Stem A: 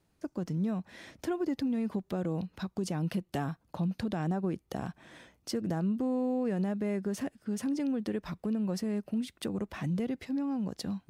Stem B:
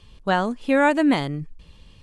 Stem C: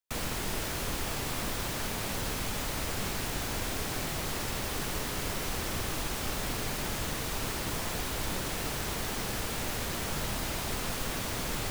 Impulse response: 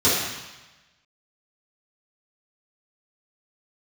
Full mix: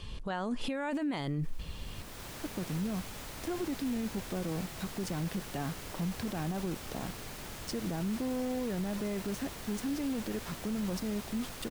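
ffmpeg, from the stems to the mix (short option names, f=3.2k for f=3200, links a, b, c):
-filter_complex "[0:a]aeval=exprs='val(0)*gte(abs(val(0)),0.00944)':c=same,adelay=2200,volume=-1.5dB[a];[1:a]acompressor=threshold=-24dB:ratio=2.5,alimiter=limit=-21dB:level=0:latency=1:release=236,acontrast=56,volume=0dB,asplit=2[b][c];[2:a]adelay=600,volume=-10dB[d];[c]apad=whole_len=542476[e];[d][e]sidechaincompress=threshold=-42dB:ratio=4:attack=16:release=559[f];[a][b][f]amix=inputs=3:normalize=0,alimiter=level_in=3dB:limit=-24dB:level=0:latency=1:release=10,volume=-3dB"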